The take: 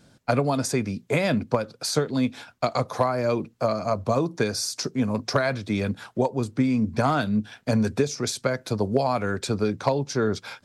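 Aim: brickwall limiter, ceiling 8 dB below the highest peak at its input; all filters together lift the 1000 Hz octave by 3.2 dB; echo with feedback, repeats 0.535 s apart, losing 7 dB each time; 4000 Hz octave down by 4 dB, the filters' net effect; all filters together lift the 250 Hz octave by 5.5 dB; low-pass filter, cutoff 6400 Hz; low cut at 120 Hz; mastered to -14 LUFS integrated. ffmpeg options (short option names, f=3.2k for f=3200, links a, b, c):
-af "highpass=120,lowpass=6.4k,equalizer=f=250:t=o:g=6.5,equalizer=f=1k:t=o:g=4,equalizer=f=4k:t=o:g=-4,alimiter=limit=-13dB:level=0:latency=1,aecho=1:1:535|1070|1605|2140|2675:0.447|0.201|0.0905|0.0407|0.0183,volume=9.5dB"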